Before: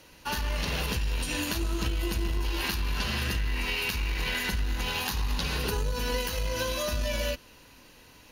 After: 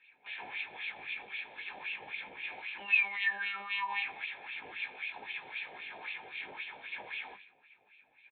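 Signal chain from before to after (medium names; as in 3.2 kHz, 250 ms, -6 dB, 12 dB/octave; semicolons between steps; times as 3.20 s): high-pass 52 Hz 12 dB/octave; bass shelf 82 Hz +7.5 dB; integer overflow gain 26.5 dB; frequency shift -230 Hz; painted sound fall, 2.79–4.03 s, 820–3000 Hz -27 dBFS; monotone LPC vocoder at 8 kHz 200 Hz; doubling 19 ms -5 dB; feedback delay 90 ms, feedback 37%, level -16.5 dB; reverberation RT60 0.45 s, pre-delay 3 ms, DRR 18.5 dB; LFO band-pass sine 3.8 Hz 650–2800 Hz; trim -9 dB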